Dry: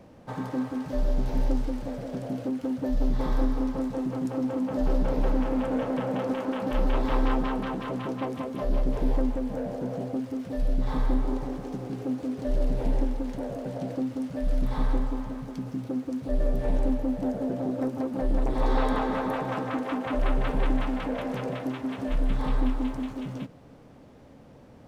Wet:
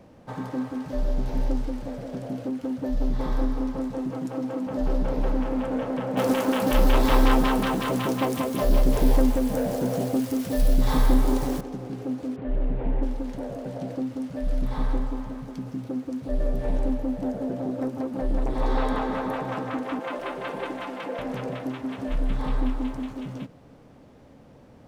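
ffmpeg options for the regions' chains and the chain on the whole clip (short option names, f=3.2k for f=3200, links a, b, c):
-filter_complex "[0:a]asettb=1/sr,asplit=3[a][b][c];[a]atrim=end=4.104[d];[b]atrim=start=4.1:end=4.67,asetpts=PTS-STARTPTS,afade=t=in:d=0.004:c=qsin,afade=t=out:st=0.566:d=0.004:c=qsin,highpass=130,aecho=1:1:6.3:0.33,atrim=end_sample=25137[e];[c]atrim=start=4.666[f];[d][e]acrossfade=d=0.004:c1=hsin:c2=qsin[g];[g][f]acrossfade=d=0.004:c1=qsin:c2=hsin,asettb=1/sr,asplit=3[h][i][j];[h]atrim=end=6.174[k];[i]atrim=start=6.17:end=11.61,asetpts=PTS-STARTPTS,afade=t=in:d=0.004:c=qsin,afade=t=out:st=5.436:d=0.004:c=qsin,acontrast=74,aemphasis=mode=production:type=75fm[l];[j]atrim=start=11.606[m];[k][l]acrossfade=d=0.004:c1=hsin:c2=qsin[n];[n][m]acrossfade=d=0.004:c1=qsin:c2=hsin,asettb=1/sr,asplit=3[o][p][q];[o]atrim=end=12.364[r];[p]atrim=start=12.36:end=13.03,asetpts=PTS-STARTPTS,afade=t=in:d=0.004:c=qsin,afade=t=out:st=0.666:d=0.004:c=qsin,lowpass=f=2.8k:w=0.5412,lowpass=f=2.8k:w=1.3066,bandreject=f=580:w=14[s];[q]atrim=start=13.026[t];[r][s]acrossfade=d=0.004:c1=hsin:c2=qsin[u];[u][t]acrossfade=d=0.004:c1=qsin:c2=hsin,asettb=1/sr,asplit=3[v][w][x];[v]atrim=end=19.994[y];[w]atrim=start=19.99:end=21.19,asetpts=PTS-STARTPTS,afade=t=in:d=0.004:c=qsin,afade=t=out:st=1.196:d=0.004:c=qsin,highpass=280,aecho=1:1:5.8:0.47,atrim=end_sample=52920[z];[x]atrim=start=21.186[aa];[y][z]acrossfade=d=0.004:c1=hsin:c2=qsin[ab];[ab][aa]acrossfade=d=0.004:c1=qsin:c2=hsin"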